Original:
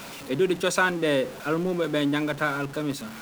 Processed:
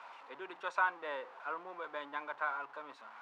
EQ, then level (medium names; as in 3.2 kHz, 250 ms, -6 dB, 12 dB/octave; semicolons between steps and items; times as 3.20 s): ladder band-pass 1.1 kHz, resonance 50%; +1.0 dB